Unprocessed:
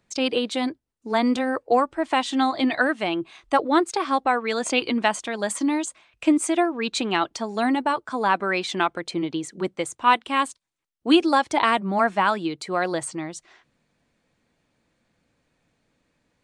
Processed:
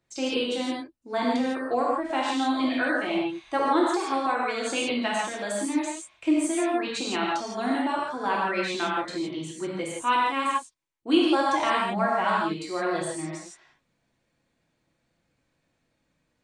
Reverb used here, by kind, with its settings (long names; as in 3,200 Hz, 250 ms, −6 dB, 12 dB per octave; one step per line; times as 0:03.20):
reverb whose tail is shaped and stops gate 190 ms flat, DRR −5 dB
level −9.5 dB